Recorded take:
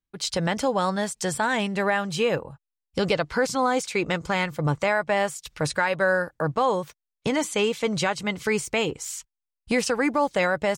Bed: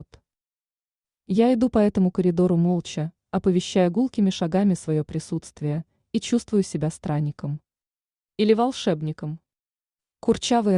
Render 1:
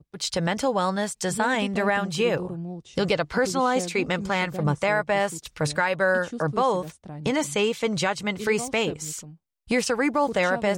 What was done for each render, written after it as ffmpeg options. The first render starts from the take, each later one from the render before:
-filter_complex "[1:a]volume=0.211[s0];[0:a][s0]amix=inputs=2:normalize=0"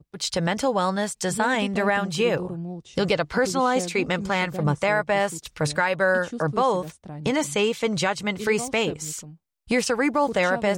-af "volume=1.12"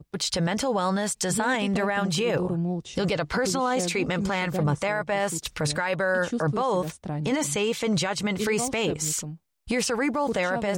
-filter_complex "[0:a]asplit=2[s0][s1];[s1]acompressor=threshold=0.0316:ratio=6,volume=1.12[s2];[s0][s2]amix=inputs=2:normalize=0,alimiter=limit=0.15:level=0:latency=1:release=15"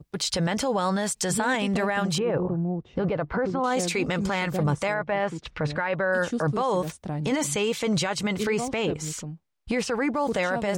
-filter_complex "[0:a]asettb=1/sr,asplit=3[s0][s1][s2];[s0]atrim=end=2.184[s3];[s1]atrim=start=2.18:end=3.64,asetpts=PTS-STARTPTS,afade=t=in:d=0.004:c=qsin,afade=t=out:st=1.456:d=0.004:c=qsin,lowpass=1400[s4];[s2]atrim=start=3.636[s5];[s3][s4]acrossfade=d=0.004:c1=hsin:c2=qsin[s6];[s6][s5]acrossfade=d=0.004:c1=qsin:c2=hsin,asettb=1/sr,asplit=3[s7][s8][s9];[s7]atrim=end=4.944[s10];[s8]atrim=start=4.94:end=6.13,asetpts=PTS-STARTPTS,afade=t=in:d=0.004:c=qsin,afade=t=out:st=1.186:d=0.004:c=qsin,lowpass=2600[s11];[s9]atrim=start=6.126[s12];[s10][s11]acrossfade=d=0.004:c1=hsin:c2=qsin[s13];[s13][s12]acrossfade=d=0.004:c1=qsin:c2=hsin,asettb=1/sr,asplit=3[s14][s15][s16];[s14]atrim=end=8.434[s17];[s15]atrim=start=8.43:end=10.16,asetpts=PTS-STARTPTS,afade=t=in:d=0.004:c=qsin,afade=t=out:st=1.726:d=0.004:c=qsin,lowpass=f=3200:p=1[s18];[s16]atrim=start=10.156[s19];[s17][s18]acrossfade=d=0.004:c1=hsin:c2=qsin[s20];[s20][s19]acrossfade=d=0.004:c1=qsin:c2=hsin"

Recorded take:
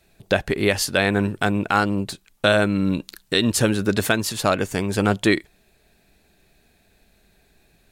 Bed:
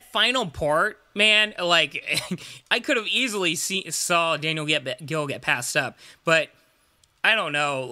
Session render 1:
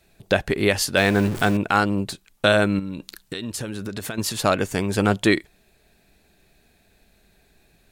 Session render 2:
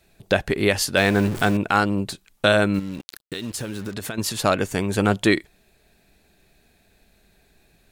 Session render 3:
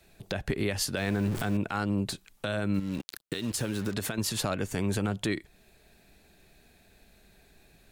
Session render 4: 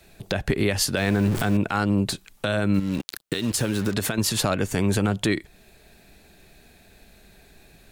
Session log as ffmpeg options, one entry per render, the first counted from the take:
-filter_complex "[0:a]asettb=1/sr,asplit=3[s0][s1][s2];[s0]atrim=end=0.974[s3];[s1]atrim=start=0.97:end=1.57,asetpts=PTS-STARTPTS,afade=t=in:d=0.004:c=qsin,afade=t=out:st=0.596:d=0.004:c=qsin,aeval=exprs='val(0)+0.5*0.0447*sgn(val(0))':c=same[s4];[s2]atrim=start=1.566[s5];[s3][s4]acrossfade=d=0.004:c1=hsin:c2=qsin[s6];[s6][s5]acrossfade=d=0.004:c1=qsin:c2=hsin,asettb=1/sr,asplit=3[s7][s8][s9];[s7]atrim=end=2.794[s10];[s8]atrim=start=2.79:end=4.18,asetpts=PTS-STARTPTS,afade=t=in:d=0.004:c=qsin,afade=t=out:st=1.386:d=0.004:c=qsin,acompressor=threshold=0.0447:ratio=6:attack=3.2:release=140:knee=1:detection=peak[s11];[s9]atrim=start=4.176[s12];[s10][s11]acrossfade=d=0.004:c1=hsin:c2=qsin[s13];[s13][s12]acrossfade=d=0.004:c1=qsin:c2=hsin"
-filter_complex "[0:a]asettb=1/sr,asplit=3[s0][s1][s2];[s0]atrim=end=2.744[s3];[s1]atrim=start=2.74:end=3.94,asetpts=PTS-STARTPTS,afade=t=in:d=0.004:c=qsin,afade=t=out:st=1.196:d=0.004:c=qsin,acrusher=bits=6:mix=0:aa=0.5[s4];[s2]atrim=start=3.936[s5];[s3][s4]acrossfade=d=0.004:c1=hsin:c2=qsin[s6];[s6][s5]acrossfade=d=0.004:c1=qsin:c2=hsin,asettb=1/sr,asplit=3[s7][s8][s9];[s7]atrim=end=4.734[s10];[s8]atrim=start=4.73:end=5.13,asetpts=PTS-STARTPTS,afade=t=in:d=0.004:c=qsin,afade=t=out:st=0.396:d=0.004:c=qsin,bandreject=f=5100:w=7.6[s11];[s9]atrim=start=5.126[s12];[s10][s11]acrossfade=d=0.004:c1=hsin:c2=qsin[s13];[s13][s12]acrossfade=d=0.004:c1=qsin:c2=hsin"
-filter_complex "[0:a]acrossover=split=210[s0][s1];[s1]acompressor=threshold=0.0251:ratio=1.5[s2];[s0][s2]amix=inputs=2:normalize=0,alimiter=limit=0.119:level=0:latency=1:release=160"
-af "volume=2.24"

